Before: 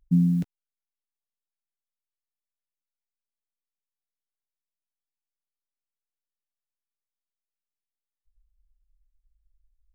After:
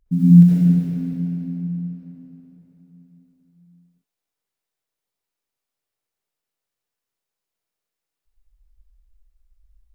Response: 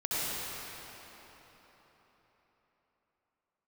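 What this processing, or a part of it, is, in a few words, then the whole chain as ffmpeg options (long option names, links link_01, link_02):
cathedral: -filter_complex "[1:a]atrim=start_sample=2205[link_01];[0:a][link_01]afir=irnorm=-1:irlink=0,equalizer=frequency=460:width=1.3:gain=3.5,volume=2dB"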